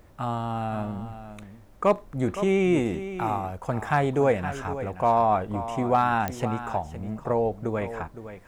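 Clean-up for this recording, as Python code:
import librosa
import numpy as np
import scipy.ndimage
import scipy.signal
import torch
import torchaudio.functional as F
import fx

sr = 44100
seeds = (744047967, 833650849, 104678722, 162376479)

y = fx.fix_declip(x, sr, threshold_db=-12.0)
y = fx.fix_declick_ar(y, sr, threshold=10.0)
y = fx.fix_echo_inverse(y, sr, delay_ms=514, level_db=-12.0)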